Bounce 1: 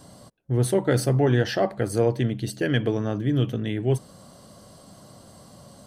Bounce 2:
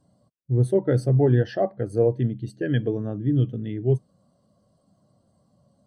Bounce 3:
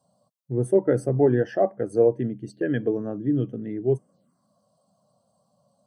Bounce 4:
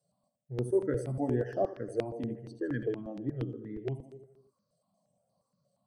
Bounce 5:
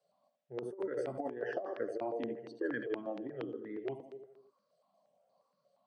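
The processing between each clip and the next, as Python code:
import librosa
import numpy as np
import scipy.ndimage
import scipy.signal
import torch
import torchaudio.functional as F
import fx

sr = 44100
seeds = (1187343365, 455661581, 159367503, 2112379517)

y1 = fx.high_shelf(x, sr, hz=8900.0, db=-4.5)
y1 = fx.spectral_expand(y1, sr, expansion=1.5)
y2 = fx.env_phaser(y1, sr, low_hz=320.0, high_hz=4000.0, full_db=-24.5)
y2 = scipy.signal.sosfilt(scipy.signal.butter(2, 220.0, 'highpass', fs=sr, output='sos'), y2)
y2 = y2 * librosa.db_to_amplitude(2.5)
y3 = fx.echo_feedback(y2, sr, ms=80, feedback_pct=57, wet_db=-10)
y3 = fx.phaser_held(y3, sr, hz=8.5, low_hz=250.0, high_hz=7300.0)
y3 = y3 * librosa.db_to_amplitude(-7.5)
y4 = fx.over_compress(y3, sr, threshold_db=-33.0, ratio=-0.5)
y4 = fx.bandpass_edges(y4, sr, low_hz=450.0, high_hz=3500.0)
y4 = y4 * librosa.db_to_amplitude(3.5)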